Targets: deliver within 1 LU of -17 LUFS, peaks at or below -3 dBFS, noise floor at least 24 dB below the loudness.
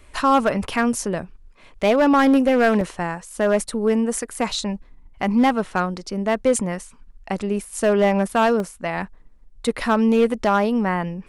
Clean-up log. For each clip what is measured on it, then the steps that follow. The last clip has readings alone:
clipped samples 0.9%; clipping level -10.5 dBFS; dropouts 2; longest dropout 1.3 ms; loudness -20.5 LUFS; peak level -10.5 dBFS; loudness target -17.0 LUFS
-> clip repair -10.5 dBFS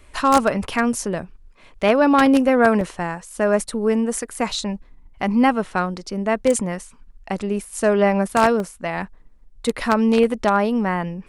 clipped samples 0.0%; dropouts 2; longest dropout 1.3 ms
-> interpolate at 2.81/8.60 s, 1.3 ms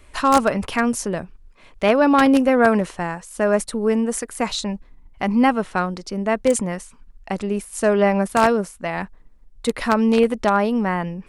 dropouts 0; loudness -20.0 LUFS; peak level -1.5 dBFS; loudness target -17.0 LUFS
-> trim +3 dB; peak limiter -3 dBFS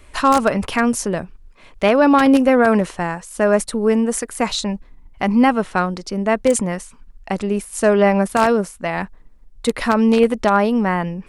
loudness -17.5 LUFS; peak level -3.0 dBFS; noise floor -46 dBFS

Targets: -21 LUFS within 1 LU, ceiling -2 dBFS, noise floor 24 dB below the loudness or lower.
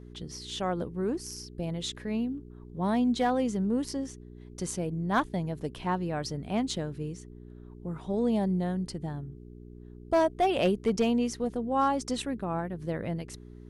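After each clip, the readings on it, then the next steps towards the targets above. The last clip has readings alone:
clipped samples 0.3%; clipping level -18.0 dBFS; hum 60 Hz; highest harmonic 420 Hz; hum level -46 dBFS; loudness -30.5 LUFS; peak level -18.0 dBFS; loudness target -21.0 LUFS
-> clip repair -18 dBFS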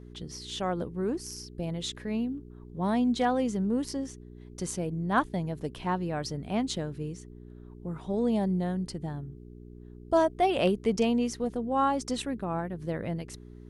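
clipped samples 0.0%; hum 60 Hz; highest harmonic 420 Hz; hum level -45 dBFS
-> de-hum 60 Hz, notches 7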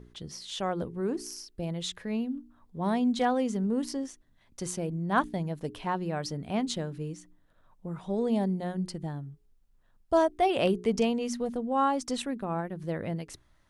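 hum not found; loudness -31.0 LUFS; peak level -12.5 dBFS; loudness target -21.0 LUFS
-> trim +10 dB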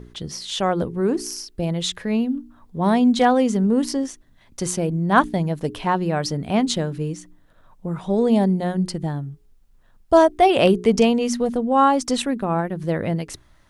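loudness -21.0 LUFS; peak level -2.5 dBFS; noise floor -55 dBFS

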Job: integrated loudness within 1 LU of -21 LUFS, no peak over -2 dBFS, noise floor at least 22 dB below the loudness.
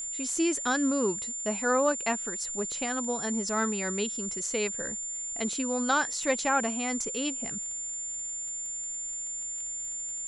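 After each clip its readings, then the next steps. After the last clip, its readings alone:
tick rate 29 per s; steady tone 7.2 kHz; tone level -33 dBFS; loudness -29.5 LUFS; peak level -13.0 dBFS; loudness target -21.0 LUFS
-> de-click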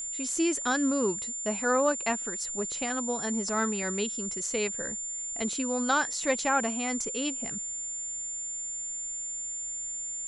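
tick rate 0 per s; steady tone 7.2 kHz; tone level -33 dBFS
-> band-stop 7.2 kHz, Q 30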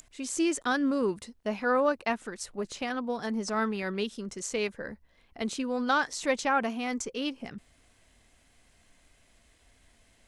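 steady tone not found; loudness -30.5 LUFS; peak level -13.5 dBFS; loudness target -21.0 LUFS
-> trim +9.5 dB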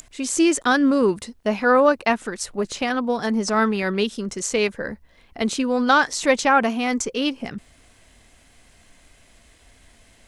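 loudness -21.0 LUFS; peak level -4.0 dBFS; noise floor -55 dBFS

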